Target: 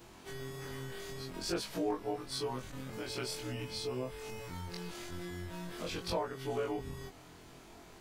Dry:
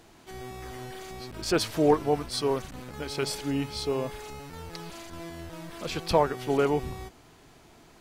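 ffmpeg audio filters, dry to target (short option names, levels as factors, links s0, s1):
-af "afftfilt=real='re':imag='-im':win_size=2048:overlap=0.75,acompressor=threshold=0.00501:ratio=2,volume=1.68"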